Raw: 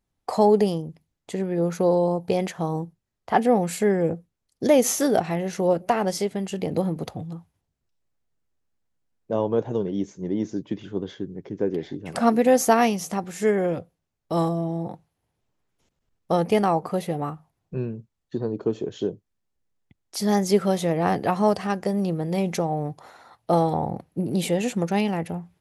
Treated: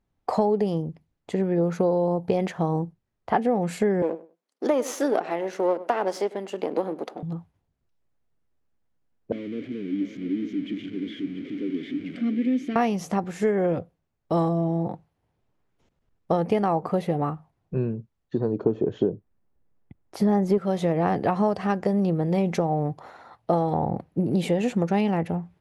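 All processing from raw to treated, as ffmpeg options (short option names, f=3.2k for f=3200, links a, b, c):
-filter_complex "[0:a]asettb=1/sr,asplit=3[a][b][c];[a]atrim=end=4.024[d];[b]atrim=start=4.02:end=7.23,asetpts=PTS-STARTPTS,afade=t=in:d=0.004:c=qsin,afade=t=out:st=3.206:d=0.004:c=qsin,aeval=exprs='if(lt(val(0),0),0.447*val(0),val(0))':c=same,highpass=f=280:w=0.5412,highpass=f=280:w=1.3066,asplit=2[e][f];[f]adelay=100,lowpass=f=2.5k:p=1,volume=-18.5dB,asplit=2[g][h];[h]adelay=100,lowpass=f=2.5k:p=1,volume=0.19[i];[e][g][i]amix=inputs=3:normalize=0,atrim=end_sample=141561[j];[c]atrim=start=7.226[k];[d][j]acrossfade=d=0.004:c1=hsin:c2=qsin[l];[l][k]acrossfade=d=0.004:c1=qsin:c2=hsin,asettb=1/sr,asplit=3[m][n][o];[m]atrim=end=9.324[p];[n]atrim=start=9.32:end=12.76,asetpts=PTS-STARTPTS,afade=t=in:d=0.004:c=qsin,afade=t=out:st=3.436:d=0.004:c=qsin,aeval=exprs='val(0)+0.5*0.0708*sgn(val(0))':c=same,asplit=3[q][r][s];[q]bandpass=f=270:t=q:w=8,volume=0dB[t];[r]bandpass=f=2.29k:t=q:w=8,volume=-6dB[u];[s]bandpass=f=3.01k:t=q:w=8,volume=-9dB[v];[t][u][v]amix=inputs=3:normalize=0,aecho=1:1:688:0.266,atrim=end_sample=151704[w];[o]atrim=start=12.756[x];[p][w]acrossfade=d=0.004:c1=hsin:c2=qsin[y];[y][x]acrossfade=d=0.004:c1=qsin:c2=hsin,asettb=1/sr,asplit=3[z][aa][ab];[z]atrim=end=18.634[ac];[aa]atrim=start=18.63:end=20.58,asetpts=PTS-STARTPTS,afade=t=in:d=0.004:c=qsin,afade=t=out:st=1.946:d=0.004:c=qsin,acontrast=49,equalizer=f=5.8k:t=o:w=2.5:g=-13.5[ad];[ab]atrim=start=20.576[ae];[ac][ad]acrossfade=d=0.004:c1=hsin:c2=qsin[af];[af][ae]acrossfade=d=0.004:c1=qsin:c2=hsin,lowpass=f=2k:p=1,acompressor=threshold=-22dB:ratio=6,volume=3.5dB"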